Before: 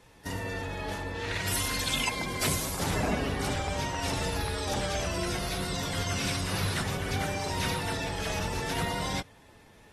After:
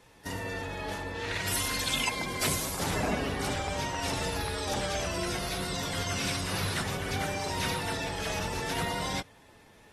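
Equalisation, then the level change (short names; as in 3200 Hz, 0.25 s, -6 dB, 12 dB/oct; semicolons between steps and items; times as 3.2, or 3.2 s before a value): low shelf 170 Hz -4 dB; 0.0 dB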